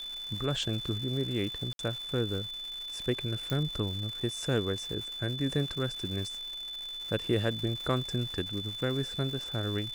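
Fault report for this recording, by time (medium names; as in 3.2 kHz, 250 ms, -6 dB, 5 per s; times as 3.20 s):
crackle 360 per s -38 dBFS
whine 3.5 kHz -37 dBFS
1.73–1.79 s: dropout 62 ms
3.50 s: pop -18 dBFS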